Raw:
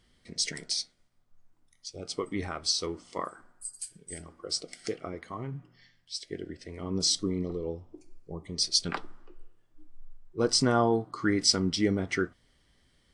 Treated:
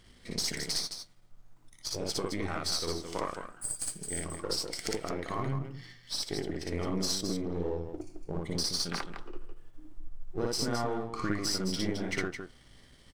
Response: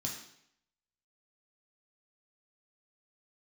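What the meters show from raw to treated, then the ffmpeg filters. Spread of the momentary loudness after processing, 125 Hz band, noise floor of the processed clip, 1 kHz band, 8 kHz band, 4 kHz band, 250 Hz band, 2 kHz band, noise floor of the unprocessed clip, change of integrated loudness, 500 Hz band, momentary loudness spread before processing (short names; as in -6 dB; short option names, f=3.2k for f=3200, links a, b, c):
12 LU, -1.0 dB, -58 dBFS, -2.5 dB, -2.5 dB, -3.5 dB, -3.5 dB, -1.5 dB, -67 dBFS, -4.0 dB, -3.0 dB, 18 LU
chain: -filter_complex "[0:a]aeval=exprs='if(lt(val(0),0),0.447*val(0),val(0))':c=same,acompressor=threshold=-40dB:ratio=6,asplit=2[a][b];[b]aecho=0:1:58.31|215.7:1|0.447[c];[a][c]amix=inputs=2:normalize=0,volume=8dB"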